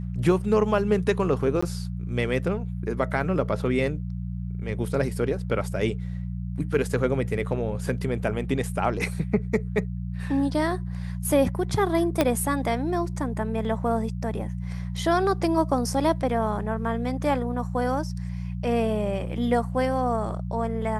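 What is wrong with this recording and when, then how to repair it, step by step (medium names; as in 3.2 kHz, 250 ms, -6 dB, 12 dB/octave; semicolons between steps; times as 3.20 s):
hum 60 Hz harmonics 3 -31 dBFS
1.61–1.62 s: dropout 15 ms
12.21 s: pop -7 dBFS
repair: de-click; de-hum 60 Hz, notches 3; interpolate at 1.61 s, 15 ms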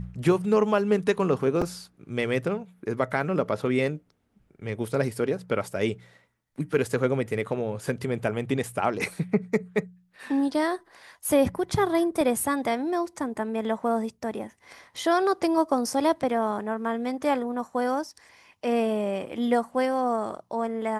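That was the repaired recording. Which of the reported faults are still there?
12.21 s: pop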